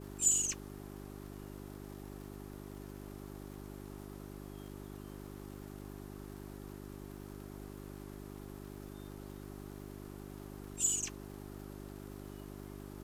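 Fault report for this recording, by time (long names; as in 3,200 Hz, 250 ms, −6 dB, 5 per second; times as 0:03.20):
surface crackle 160 per second −49 dBFS
mains hum 50 Hz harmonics 8 −48 dBFS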